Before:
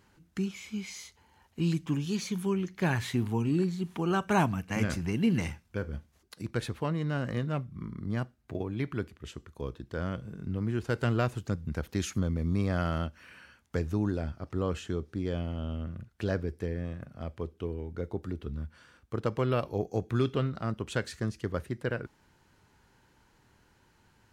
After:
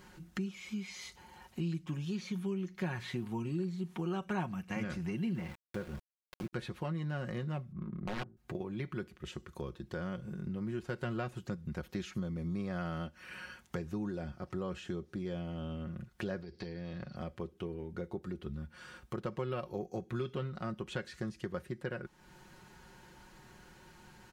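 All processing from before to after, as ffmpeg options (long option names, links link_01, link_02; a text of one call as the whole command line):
ffmpeg -i in.wav -filter_complex "[0:a]asettb=1/sr,asplit=3[link_01][link_02][link_03];[link_01]atrim=end=5.354[link_04];[link_02]atrim=start=5.35:end=6.53,asetpts=PTS-STARTPTS,afade=type=in:duration=0.004:curve=qsin,afade=type=out:start_time=1.176:duration=0.004:curve=qsin,lowpass=2000,aeval=exprs='val(0)*gte(abs(val(0)),0.00891)':channel_layout=same[link_05];[link_03]atrim=start=6.526[link_06];[link_04][link_05]acrossfade=duration=0.004:curve1=hsin:curve2=qsin[link_07];[link_07][link_06]acrossfade=duration=0.004:curve1=qsin:curve2=hsin,asettb=1/sr,asplit=3[link_08][link_09][link_10];[link_08]atrim=end=7.724[link_11];[link_09]atrim=start=7.72:end=8.37,asetpts=PTS-STARTPTS,afade=type=in:duration=0.004:curve=qsin,afade=type=out:start_time=0.646:duration=0.004:curve=qsin,bandreject=frequency=54.86:width_type=h:width=4,bandreject=frequency=109.72:width_type=h:width=4,bandreject=frequency=164.58:width_type=h:width=4,bandreject=frequency=219.44:width_type=h:width=4,bandreject=frequency=274.3:width_type=h:width=4,bandreject=frequency=329.16:width_type=h:width=4,bandreject=frequency=384.02:width_type=h:width=4,aeval=exprs='(mod(20*val(0)+1,2)-1)/20':channel_layout=same,adynamicsmooth=sensitivity=6:basefreq=780[link_12];[link_10]atrim=start=8.366[link_13];[link_11][link_12]acrossfade=duration=0.004:curve1=hsin:curve2=qsin[link_14];[link_14][link_13]acrossfade=duration=0.004:curve1=qsin:curve2=hsin,asettb=1/sr,asplit=3[link_15][link_16][link_17];[link_15]atrim=end=16.424[link_18];[link_16]atrim=start=16.42:end=17.16,asetpts=PTS-STARTPTS,afade=type=in:duration=0.004:curve=qsin,afade=type=out:start_time=0.736:duration=0.004:curve=qsin,acompressor=threshold=-36dB:ratio=5:attack=3.2:release=140:knee=1:detection=peak,lowpass=frequency=4500:width_type=q:width=8[link_19];[link_17]atrim=start=17.156[link_20];[link_18][link_19]acrossfade=duration=0.004:curve1=hsin:curve2=qsin[link_21];[link_21][link_20]acrossfade=duration=0.004:curve1=qsin:curve2=hsin,acrossover=split=4600[link_22][link_23];[link_23]acompressor=threshold=-55dB:ratio=4:attack=1:release=60[link_24];[link_22][link_24]amix=inputs=2:normalize=0,aecho=1:1:5.5:0.62,acompressor=threshold=-49dB:ratio=2.5,volume=6.5dB" out.wav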